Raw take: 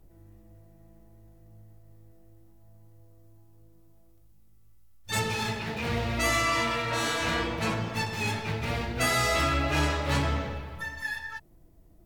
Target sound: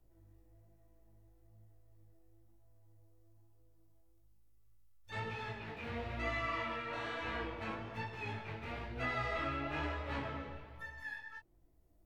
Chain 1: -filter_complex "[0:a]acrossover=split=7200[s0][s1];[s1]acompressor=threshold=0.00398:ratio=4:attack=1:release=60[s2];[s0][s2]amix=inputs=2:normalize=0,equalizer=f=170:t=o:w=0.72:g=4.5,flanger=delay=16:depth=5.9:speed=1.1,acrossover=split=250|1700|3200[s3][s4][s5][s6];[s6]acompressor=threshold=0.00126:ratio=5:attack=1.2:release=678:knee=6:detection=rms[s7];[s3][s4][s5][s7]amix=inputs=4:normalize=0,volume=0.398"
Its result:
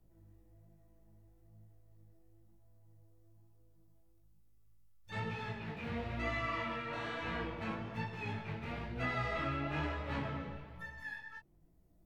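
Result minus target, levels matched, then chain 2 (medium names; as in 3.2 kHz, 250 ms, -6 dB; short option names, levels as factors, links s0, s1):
125 Hz band +2.5 dB
-filter_complex "[0:a]acrossover=split=7200[s0][s1];[s1]acompressor=threshold=0.00398:ratio=4:attack=1:release=60[s2];[s0][s2]amix=inputs=2:normalize=0,equalizer=f=170:t=o:w=0.72:g=-6.5,flanger=delay=16:depth=5.9:speed=1.1,acrossover=split=250|1700|3200[s3][s4][s5][s6];[s6]acompressor=threshold=0.00126:ratio=5:attack=1.2:release=678:knee=6:detection=rms[s7];[s3][s4][s5][s7]amix=inputs=4:normalize=0,volume=0.398"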